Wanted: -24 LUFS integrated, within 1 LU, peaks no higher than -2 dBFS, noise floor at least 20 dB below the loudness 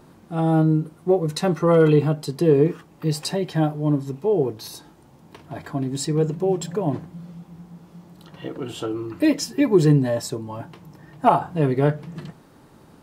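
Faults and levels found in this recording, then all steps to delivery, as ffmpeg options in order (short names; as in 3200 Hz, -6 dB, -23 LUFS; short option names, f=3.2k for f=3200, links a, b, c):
loudness -21.5 LUFS; peak -4.5 dBFS; loudness target -24.0 LUFS
-> -af "volume=-2.5dB"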